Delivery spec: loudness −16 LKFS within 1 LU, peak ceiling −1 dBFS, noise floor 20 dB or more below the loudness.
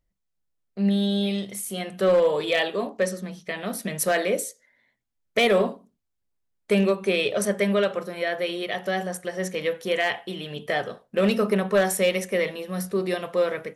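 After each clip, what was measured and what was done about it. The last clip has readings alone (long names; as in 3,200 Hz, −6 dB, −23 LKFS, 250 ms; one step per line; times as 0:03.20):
share of clipped samples 0.2%; peaks flattened at −13.5 dBFS; integrated loudness −25.0 LKFS; sample peak −13.5 dBFS; target loudness −16.0 LKFS
→ clipped peaks rebuilt −13.5 dBFS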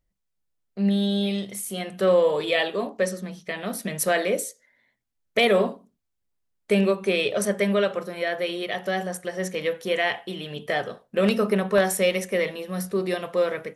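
share of clipped samples 0.0%; integrated loudness −25.0 LKFS; sample peak −5.5 dBFS; target loudness −16.0 LKFS
→ level +9 dB
brickwall limiter −1 dBFS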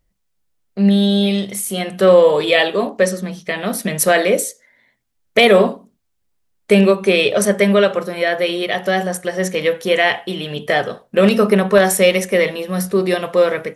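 integrated loudness −16.0 LKFS; sample peak −1.0 dBFS; background noise floor −68 dBFS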